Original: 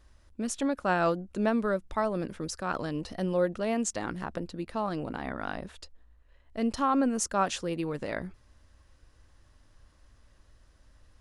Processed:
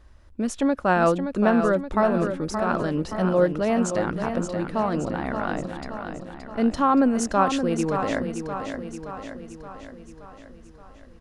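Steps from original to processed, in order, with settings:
high-shelf EQ 3,300 Hz −9 dB
repeating echo 573 ms, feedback 57%, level −7.5 dB
level +7 dB

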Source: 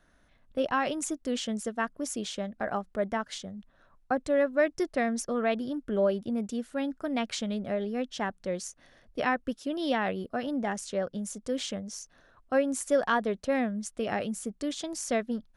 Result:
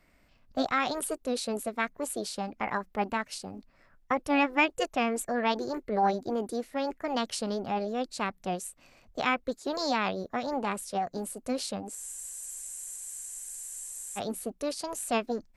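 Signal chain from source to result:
formants moved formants +5 semitones
frozen spectrum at 0:11.97, 2.21 s

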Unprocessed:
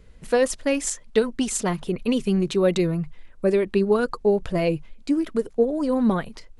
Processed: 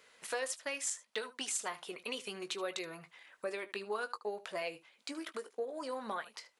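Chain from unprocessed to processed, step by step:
high-pass filter 860 Hz 12 dB per octave
downward compressor 2 to 1, threshold −47 dBFS, peak gain reduction 13 dB
ambience of single reflections 19 ms −11 dB, 76 ms −17.5 dB
level +2.5 dB

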